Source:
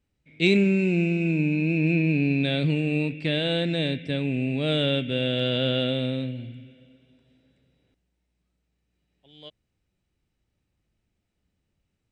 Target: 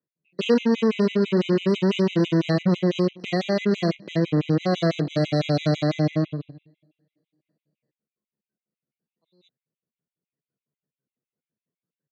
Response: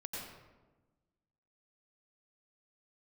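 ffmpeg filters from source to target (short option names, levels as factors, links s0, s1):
-filter_complex "[0:a]aemphasis=mode=reproduction:type=75kf,acrossover=split=270|880|2500[s0][s1][s2][s3];[s2]aphaser=in_gain=1:out_gain=1:delay=1.9:decay=0.68:speed=0.4:type=triangular[s4];[s3]alimiter=level_in=2.24:limit=0.0631:level=0:latency=1:release=348,volume=0.447[s5];[s0][s1][s4][s5]amix=inputs=4:normalize=0,asoftclip=type=tanh:threshold=0.106,aeval=exprs='0.106*(cos(1*acos(clip(val(0)/0.106,-1,1)))-cos(1*PI/2))+0.00841*(cos(5*acos(clip(val(0)/0.106,-1,1)))-cos(5*PI/2))+0.0188*(cos(7*acos(clip(val(0)/0.106,-1,1)))-cos(7*PI/2))':c=same,asetrate=52444,aresample=44100,atempo=0.840896,highpass=f=150:w=0.5412,highpass=f=150:w=1.3066,equalizer=f=150:t=q:w=4:g=7,equalizer=f=470:t=q:w=4:g=5,equalizer=f=840:t=q:w=4:g=-9,equalizer=f=3300:t=q:w=4:g=-7,lowpass=f=5700:w=0.5412,lowpass=f=5700:w=1.3066,afftfilt=real='re*gt(sin(2*PI*6*pts/sr)*(1-2*mod(floor(b*sr/1024/2000),2)),0)':imag='im*gt(sin(2*PI*6*pts/sr)*(1-2*mod(floor(b*sr/1024/2000),2)),0)':win_size=1024:overlap=0.75,volume=2.11"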